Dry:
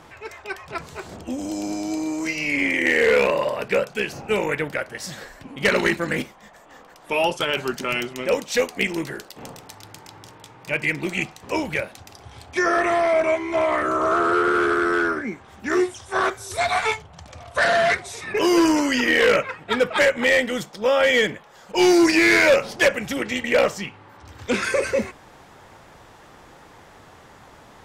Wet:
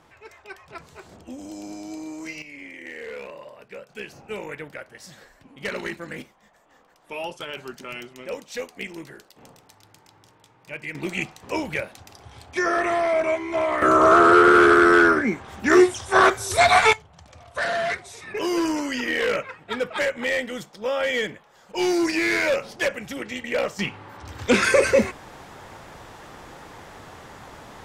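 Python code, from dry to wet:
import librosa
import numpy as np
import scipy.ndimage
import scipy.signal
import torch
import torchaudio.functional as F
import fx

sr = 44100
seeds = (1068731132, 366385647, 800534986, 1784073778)

y = fx.gain(x, sr, db=fx.steps((0.0, -9.0), (2.42, -19.0), (3.89, -11.0), (10.95, -2.5), (13.82, 6.0), (16.93, -6.5), (23.79, 4.5)))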